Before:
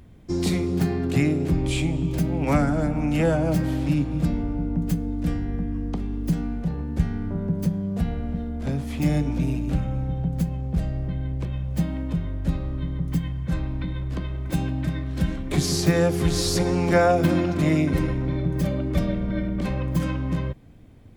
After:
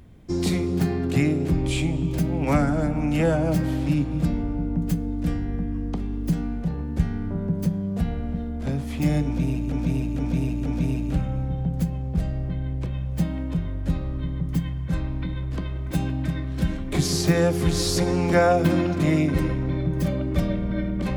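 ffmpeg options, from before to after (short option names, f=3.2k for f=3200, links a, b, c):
-filter_complex "[0:a]asplit=4[a][b][c][d];[a]atrim=end=9.722[e];[b]atrim=start=9.248:end=9.722[f];[c]atrim=start=9.248:end=9.722[g];[d]atrim=start=9.248[h];[e][f]acrossfade=d=0.004:c1=hsin:c2=hsin[i];[i][g]acrossfade=d=0.004:c1=hsin:c2=hsin[j];[j][h]acrossfade=d=0.004:c1=hsin:c2=hsin"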